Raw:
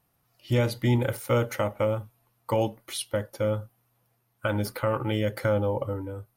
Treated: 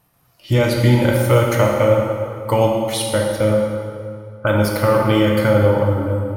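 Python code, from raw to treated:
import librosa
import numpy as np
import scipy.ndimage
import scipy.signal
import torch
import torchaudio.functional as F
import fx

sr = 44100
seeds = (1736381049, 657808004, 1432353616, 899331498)

p1 = fx.lowpass(x, sr, hz=1400.0, slope=24, at=(3.51, 4.47))
p2 = fx.level_steps(p1, sr, step_db=9)
p3 = p1 + (p2 * librosa.db_to_amplitude(1.0))
p4 = fx.rev_plate(p3, sr, seeds[0], rt60_s=2.3, hf_ratio=0.7, predelay_ms=0, drr_db=-1.0)
y = p4 * librosa.db_to_amplitude(3.0)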